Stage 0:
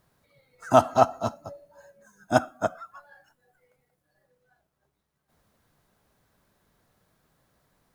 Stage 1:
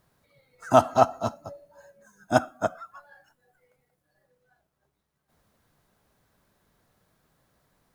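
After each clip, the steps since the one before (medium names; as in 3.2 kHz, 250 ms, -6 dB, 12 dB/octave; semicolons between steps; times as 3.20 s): no audible change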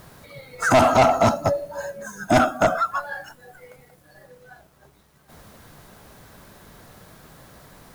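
in parallel at +2 dB: compressor with a negative ratio -31 dBFS, ratio -1; on the sum: saturation -19.5 dBFS, distortion -6 dB; trim +9 dB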